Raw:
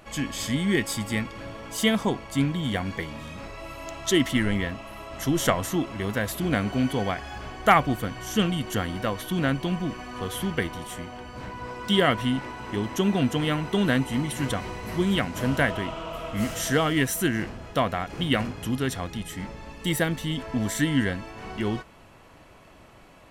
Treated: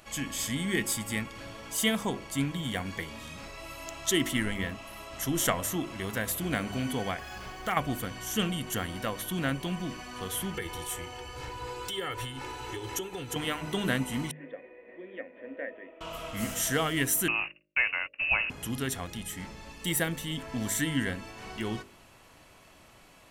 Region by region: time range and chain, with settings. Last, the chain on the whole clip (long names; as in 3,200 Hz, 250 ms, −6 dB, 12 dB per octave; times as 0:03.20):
0:07.19–0:07.77: running median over 5 samples + comb filter 5.5 ms, depth 41% + downward compressor 2.5 to 1, threshold −25 dBFS
0:10.54–0:13.36: downward compressor, threshold −28 dBFS + comb filter 2.3 ms, depth 100%
0:14.31–0:16.01: formant resonators in series e + low shelf with overshoot 190 Hz −12 dB, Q 3 + mains-hum notches 50/100/150/200/250/300/350/400/450/500 Hz
0:17.28–0:18.50: noise gate −35 dBFS, range −53 dB + voice inversion scrambler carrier 2,800 Hz
whole clip: high-shelf EQ 2,800 Hz +10.5 dB; hum removal 50.67 Hz, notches 12; dynamic equaliser 4,600 Hz, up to −6 dB, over −41 dBFS, Q 1.4; level −6 dB